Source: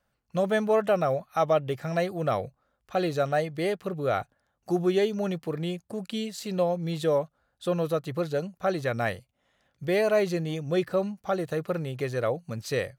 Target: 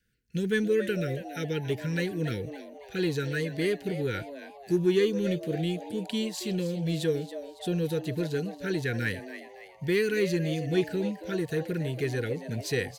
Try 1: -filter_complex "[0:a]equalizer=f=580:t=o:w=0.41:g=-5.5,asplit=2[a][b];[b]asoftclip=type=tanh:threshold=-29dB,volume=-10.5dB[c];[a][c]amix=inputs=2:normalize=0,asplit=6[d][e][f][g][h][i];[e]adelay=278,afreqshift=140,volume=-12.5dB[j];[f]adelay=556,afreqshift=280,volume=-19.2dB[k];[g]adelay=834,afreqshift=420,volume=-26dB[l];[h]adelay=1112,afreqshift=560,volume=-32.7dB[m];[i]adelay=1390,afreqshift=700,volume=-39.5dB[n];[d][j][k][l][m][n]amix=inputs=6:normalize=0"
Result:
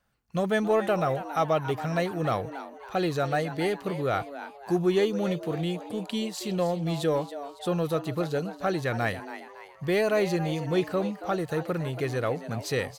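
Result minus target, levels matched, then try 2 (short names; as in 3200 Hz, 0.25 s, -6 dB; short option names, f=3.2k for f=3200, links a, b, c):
1000 Hz band +12.0 dB
-filter_complex "[0:a]asuperstop=centerf=850:order=20:qfactor=0.91,equalizer=f=580:t=o:w=0.41:g=-5.5,asplit=2[a][b];[b]asoftclip=type=tanh:threshold=-29dB,volume=-10.5dB[c];[a][c]amix=inputs=2:normalize=0,asplit=6[d][e][f][g][h][i];[e]adelay=278,afreqshift=140,volume=-12.5dB[j];[f]adelay=556,afreqshift=280,volume=-19.2dB[k];[g]adelay=834,afreqshift=420,volume=-26dB[l];[h]adelay=1112,afreqshift=560,volume=-32.7dB[m];[i]adelay=1390,afreqshift=700,volume=-39.5dB[n];[d][j][k][l][m][n]amix=inputs=6:normalize=0"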